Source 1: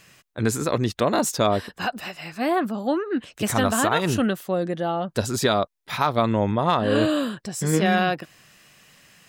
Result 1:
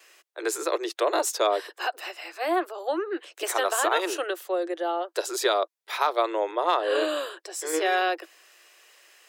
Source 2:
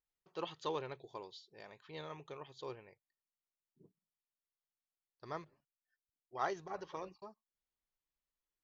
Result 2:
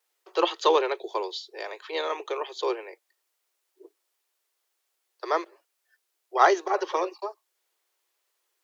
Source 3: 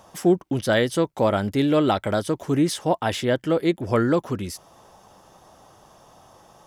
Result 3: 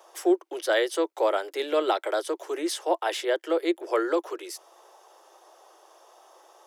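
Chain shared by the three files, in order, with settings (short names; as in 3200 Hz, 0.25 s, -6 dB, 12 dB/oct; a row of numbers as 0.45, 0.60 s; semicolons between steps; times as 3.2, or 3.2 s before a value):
vibrato 0.66 Hz 14 cents; steep high-pass 330 Hz 96 dB/oct; match loudness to -27 LUFS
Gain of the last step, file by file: -2.0, +18.5, -2.5 dB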